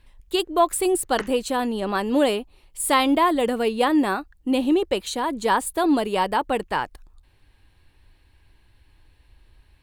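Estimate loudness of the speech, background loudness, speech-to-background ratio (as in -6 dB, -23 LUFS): -22.5 LUFS, -38.0 LUFS, 15.5 dB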